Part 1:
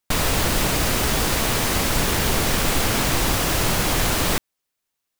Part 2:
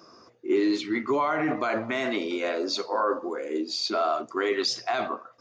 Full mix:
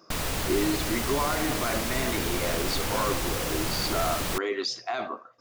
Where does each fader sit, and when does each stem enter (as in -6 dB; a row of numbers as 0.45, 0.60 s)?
-9.0, -3.5 dB; 0.00, 0.00 s